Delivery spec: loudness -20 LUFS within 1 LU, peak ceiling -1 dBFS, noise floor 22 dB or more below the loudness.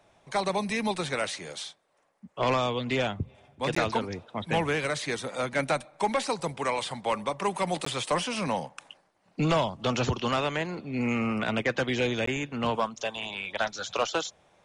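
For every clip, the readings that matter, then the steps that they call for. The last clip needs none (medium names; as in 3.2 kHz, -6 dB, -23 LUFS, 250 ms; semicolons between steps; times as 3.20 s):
dropouts 3; longest dropout 14 ms; loudness -29.5 LUFS; peak level -15.5 dBFS; loudness target -20.0 LUFS
-> interpolate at 3.75/7.85/12.26 s, 14 ms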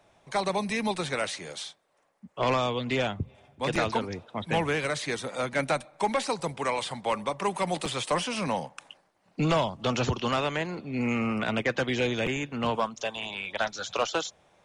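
dropouts 0; loudness -29.5 LUFS; peak level -15.5 dBFS; loudness target -20.0 LUFS
-> trim +9.5 dB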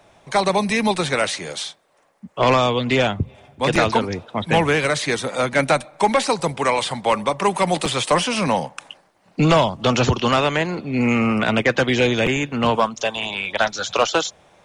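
loudness -20.0 LUFS; peak level -6.0 dBFS; noise floor -59 dBFS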